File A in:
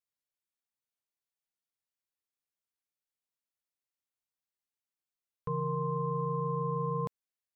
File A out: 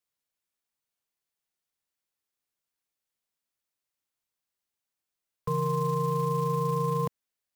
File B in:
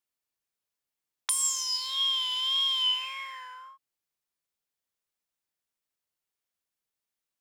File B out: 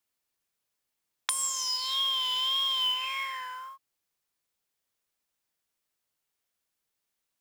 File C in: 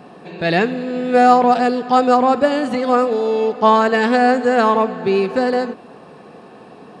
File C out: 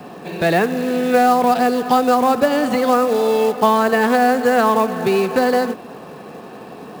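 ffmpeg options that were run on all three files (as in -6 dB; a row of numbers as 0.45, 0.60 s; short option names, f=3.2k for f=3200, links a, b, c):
-filter_complex "[0:a]acrossover=split=220|540|1600[a][b][c][d];[a]acompressor=threshold=-31dB:ratio=4[e];[b]acompressor=threshold=-27dB:ratio=4[f];[c]acompressor=threshold=-21dB:ratio=4[g];[d]acompressor=threshold=-34dB:ratio=4[h];[e][f][g][h]amix=inputs=4:normalize=0,acrusher=bits=5:mode=log:mix=0:aa=0.000001,volume=5dB"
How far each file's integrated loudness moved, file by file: +5.0, -1.5, -0.5 LU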